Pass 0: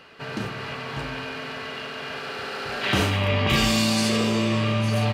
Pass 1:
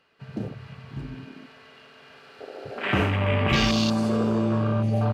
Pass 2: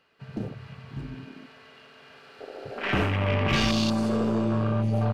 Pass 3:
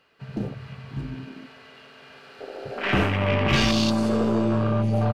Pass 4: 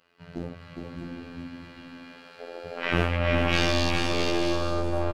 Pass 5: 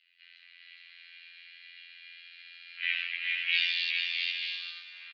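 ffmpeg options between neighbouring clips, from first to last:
ffmpeg -i in.wav -af "afwtdn=0.0562" out.wav
ffmpeg -i in.wav -af "aeval=exprs='(tanh(5.62*val(0)+0.35)-tanh(0.35))/5.62':channel_layout=same" out.wav
ffmpeg -i in.wav -filter_complex "[0:a]asplit=2[link_01][link_02];[link_02]adelay=15,volume=-12dB[link_03];[link_01][link_03]amix=inputs=2:normalize=0,volume=3dB" out.wav
ffmpeg -i in.wav -af "afftfilt=real='hypot(re,im)*cos(PI*b)':imag='0':win_size=2048:overlap=0.75,aecho=1:1:410|656|803.6|892.2|945.3:0.631|0.398|0.251|0.158|0.1" out.wav
ffmpeg -i in.wav -filter_complex "[0:a]asplit=2[link_01][link_02];[link_02]volume=22.5dB,asoftclip=hard,volume=-22.5dB,volume=-6dB[link_03];[link_01][link_03]amix=inputs=2:normalize=0,asuperpass=centerf=2900:order=8:qfactor=1.2" out.wav

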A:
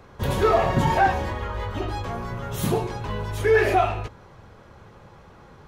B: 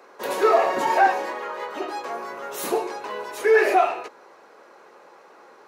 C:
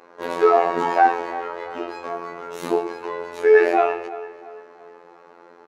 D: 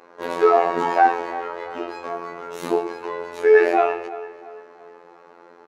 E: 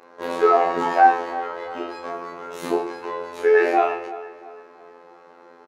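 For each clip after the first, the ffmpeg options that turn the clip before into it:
ffmpeg -i in.wav -af "highpass=frequency=340:width=0.5412,highpass=frequency=340:width=1.3066,equalizer=frequency=3300:width=5.9:gain=-8,volume=2dB" out.wav
ffmpeg -i in.wav -filter_complex "[0:a]aemphasis=mode=reproduction:type=bsi,afftfilt=real='hypot(re,im)*cos(PI*b)':imag='0':win_size=2048:overlap=0.75,asplit=2[link_01][link_02];[link_02]adelay=339,lowpass=frequency=3800:poles=1,volume=-16dB,asplit=2[link_03][link_04];[link_04]adelay=339,lowpass=frequency=3800:poles=1,volume=0.41,asplit=2[link_05][link_06];[link_06]adelay=339,lowpass=frequency=3800:poles=1,volume=0.41,asplit=2[link_07][link_08];[link_08]adelay=339,lowpass=frequency=3800:poles=1,volume=0.41[link_09];[link_01][link_03][link_05][link_07][link_09]amix=inputs=5:normalize=0,volume=3.5dB" out.wav
ffmpeg -i in.wav -af anull out.wav
ffmpeg -i in.wav -filter_complex "[0:a]asplit=2[link_01][link_02];[link_02]adelay=31,volume=-5dB[link_03];[link_01][link_03]amix=inputs=2:normalize=0,volume=-1dB" out.wav

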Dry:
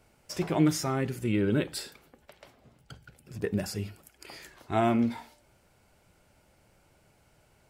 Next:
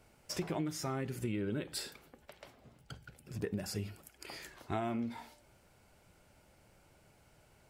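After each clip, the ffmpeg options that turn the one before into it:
ffmpeg -i in.wav -af "acompressor=threshold=-32dB:ratio=8,volume=-1dB" out.wav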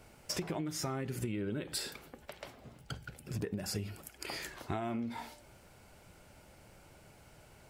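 ffmpeg -i in.wav -af "acompressor=threshold=-40dB:ratio=6,volume=6.5dB" out.wav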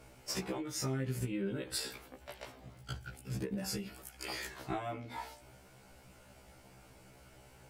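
ffmpeg -i in.wav -af "afftfilt=real='re*1.73*eq(mod(b,3),0)':imag='im*1.73*eq(mod(b,3),0)':win_size=2048:overlap=0.75,volume=2.5dB" out.wav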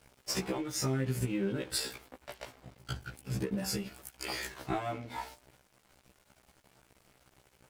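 ffmpeg -i in.wav -af "aeval=exprs='sgn(val(0))*max(abs(val(0))-0.00158,0)':channel_layout=same,volume=4.5dB" out.wav

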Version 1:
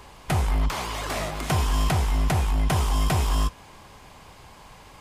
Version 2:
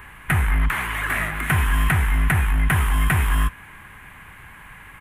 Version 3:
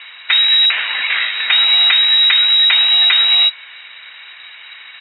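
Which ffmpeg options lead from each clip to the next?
ffmpeg -i in.wav -af "firequalizer=gain_entry='entry(150,0);entry(550,-11);entry(1700,12);entry(4900,-22);entry(10000,3)':delay=0.05:min_phase=1,volume=3.5dB" out.wav
ffmpeg -i in.wav -af "lowpass=frequency=3300:width_type=q:width=0.5098,lowpass=frequency=3300:width_type=q:width=0.6013,lowpass=frequency=3300:width_type=q:width=0.9,lowpass=frequency=3300:width_type=q:width=2.563,afreqshift=-3900,volume=6.5dB" out.wav

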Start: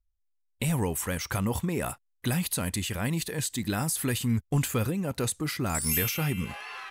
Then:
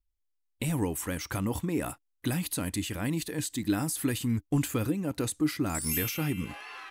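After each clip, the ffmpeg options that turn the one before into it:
ffmpeg -i in.wav -af "equalizer=frequency=300:width_type=o:width=0.28:gain=12.5,volume=-3.5dB" out.wav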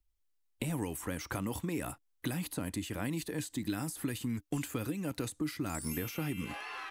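ffmpeg -i in.wav -filter_complex "[0:a]acrossover=split=190|1500[link_01][link_02][link_03];[link_01]acompressor=threshold=-45dB:ratio=4[link_04];[link_02]acompressor=threshold=-39dB:ratio=4[link_05];[link_03]acompressor=threshold=-46dB:ratio=4[link_06];[link_04][link_05][link_06]amix=inputs=3:normalize=0,volume=2.5dB" out.wav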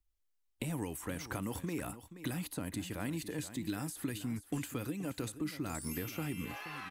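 ffmpeg -i in.wav -af "aecho=1:1:477:0.224,volume=-2.5dB" out.wav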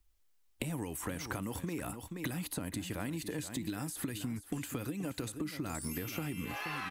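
ffmpeg -i in.wav -af "acompressor=threshold=-44dB:ratio=6,volume=9dB" out.wav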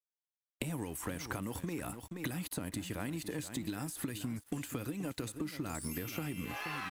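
ffmpeg -i in.wav -af "aeval=exprs='sgn(val(0))*max(abs(val(0))-0.0015,0)':channel_layout=same" out.wav

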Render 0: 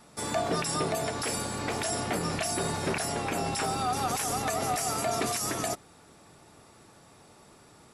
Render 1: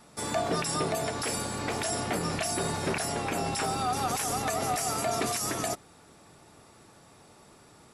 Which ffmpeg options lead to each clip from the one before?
ffmpeg -i in.wav -af anull out.wav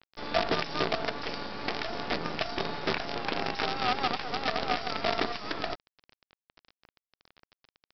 ffmpeg -i in.wav -af "highpass=190,aresample=11025,acrusher=bits=5:dc=4:mix=0:aa=0.000001,aresample=44100,volume=1.5dB" out.wav

